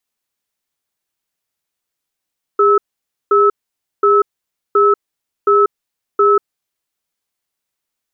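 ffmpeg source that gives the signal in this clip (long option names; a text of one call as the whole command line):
ffmpeg -f lavfi -i "aevalsrc='0.299*(sin(2*PI*407*t)+sin(2*PI*1300*t))*clip(min(mod(t,0.72),0.19-mod(t,0.72))/0.005,0,1)':duration=4:sample_rate=44100" out.wav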